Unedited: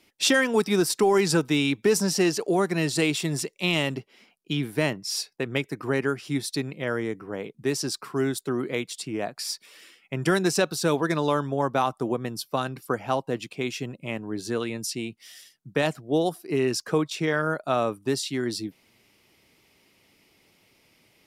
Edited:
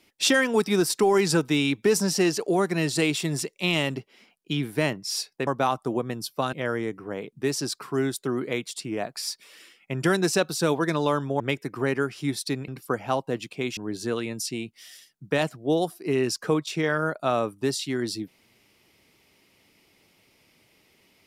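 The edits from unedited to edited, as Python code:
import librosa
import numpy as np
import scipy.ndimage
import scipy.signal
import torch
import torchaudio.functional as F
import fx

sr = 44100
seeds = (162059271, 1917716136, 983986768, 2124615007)

y = fx.edit(x, sr, fx.swap(start_s=5.47, length_s=1.28, other_s=11.62, other_length_s=1.06),
    fx.cut(start_s=13.77, length_s=0.44), tone=tone)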